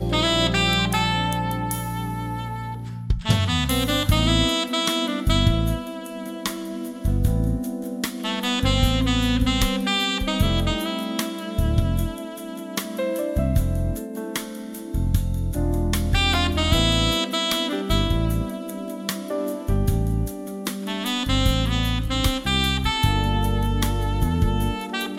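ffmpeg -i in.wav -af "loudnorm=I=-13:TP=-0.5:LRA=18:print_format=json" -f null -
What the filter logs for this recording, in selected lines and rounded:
"input_i" : "-23.0",
"input_tp" : "-6.0",
"input_lra" : "3.8",
"input_thresh" : "-33.1",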